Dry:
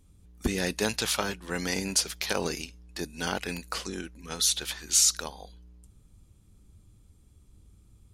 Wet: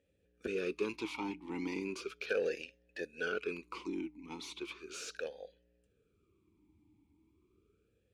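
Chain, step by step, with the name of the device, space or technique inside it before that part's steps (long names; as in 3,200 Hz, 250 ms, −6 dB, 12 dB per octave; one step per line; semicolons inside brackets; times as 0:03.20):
parametric band 69 Hz +5.5 dB 0.93 octaves
talk box (tube saturation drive 22 dB, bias 0.2; formant filter swept between two vowels e-u 0.36 Hz)
level +7 dB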